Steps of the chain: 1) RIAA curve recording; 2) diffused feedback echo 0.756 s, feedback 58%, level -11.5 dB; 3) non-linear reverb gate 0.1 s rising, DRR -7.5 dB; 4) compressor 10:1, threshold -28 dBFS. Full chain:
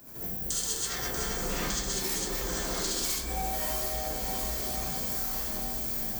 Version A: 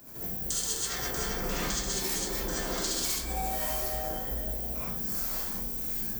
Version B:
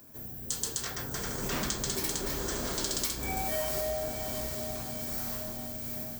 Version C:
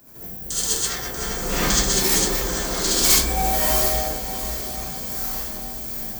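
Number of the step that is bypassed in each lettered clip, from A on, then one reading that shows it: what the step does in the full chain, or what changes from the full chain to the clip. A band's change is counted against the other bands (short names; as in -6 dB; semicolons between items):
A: 2, momentary loudness spread change +1 LU; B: 3, momentary loudness spread change +3 LU; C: 4, mean gain reduction 6.5 dB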